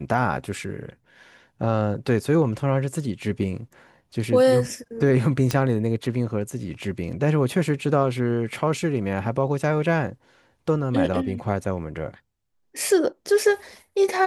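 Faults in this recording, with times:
5.51 s: pop -8 dBFS

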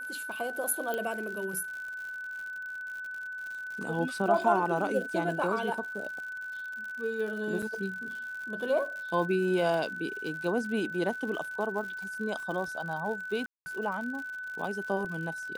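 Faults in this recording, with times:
crackle 110 per s -38 dBFS
whine 1.5 kHz -36 dBFS
0.94 s: pop -19 dBFS
7.62–7.63 s: dropout 5.3 ms
13.46–13.66 s: dropout 200 ms

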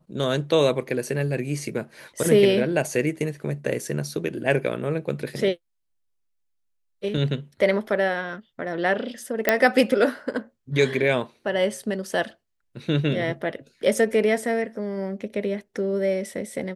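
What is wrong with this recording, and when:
9.49 s: pop -3 dBFS

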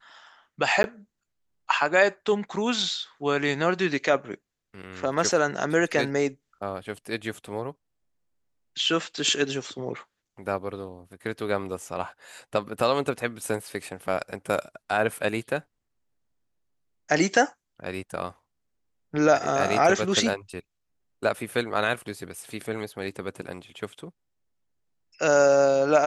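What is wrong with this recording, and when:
0.83–0.84 s: dropout 11 ms

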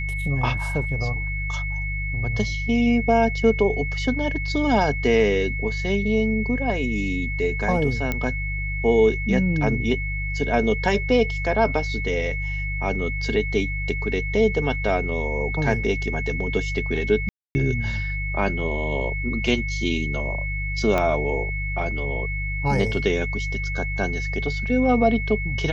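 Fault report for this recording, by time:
hum 50 Hz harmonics 3 -28 dBFS
whine 2.2 kHz -29 dBFS
8.12 s: pop -11 dBFS
17.29–17.55 s: dropout 260 ms
20.98 s: pop -10 dBFS

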